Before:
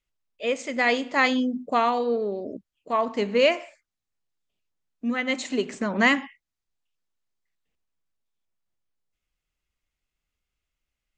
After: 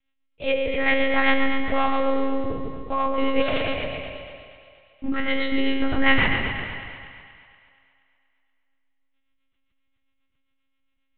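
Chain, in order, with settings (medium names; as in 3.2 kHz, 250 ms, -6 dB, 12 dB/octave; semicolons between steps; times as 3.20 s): spectral sustain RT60 1.36 s; in parallel at -0.5 dB: compression, threshold -33 dBFS, peak gain reduction 19 dB; on the sum: rotary cabinet horn 7.5 Hz; 3.41–5.09 s: hard clipper -24 dBFS, distortion -11 dB; monotone LPC vocoder at 8 kHz 270 Hz; two-band feedback delay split 620 Hz, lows 159 ms, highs 238 ms, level -9.5 dB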